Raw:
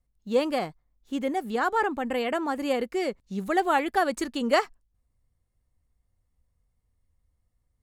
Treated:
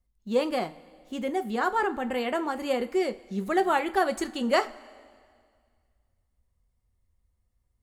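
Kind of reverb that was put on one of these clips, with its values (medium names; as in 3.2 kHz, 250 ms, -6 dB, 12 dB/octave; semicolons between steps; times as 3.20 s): two-slope reverb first 0.22 s, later 2 s, from -19 dB, DRR 7.5 dB; trim -1.5 dB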